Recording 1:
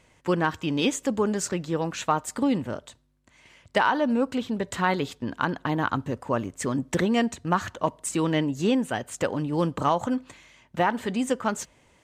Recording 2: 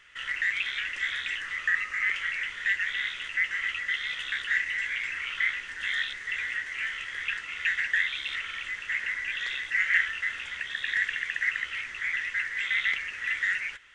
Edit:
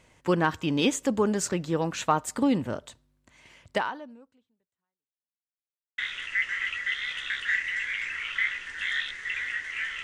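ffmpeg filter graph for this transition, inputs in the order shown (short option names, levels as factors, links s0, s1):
-filter_complex "[0:a]apad=whole_dur=10.03,atrim=end=10.03,asplit=2[s0][s1];[s0]atrim=end=5.47,asetpts=PTS-STARTPTS,afade=t=out:st=3.7:d=1.77:c=exp[s2];[s1]atrim=start=5.47:end=5.98,asetpts=PTS-STARTPTS,volume=0[s3];[1:a]atrim=start=3:end=7.05,asetpts=PTS-STARTPTS,afade=t=in:d=0.004:c=hsin[s4];[s2][s3][s4]concat=n=3:v=0:a=1"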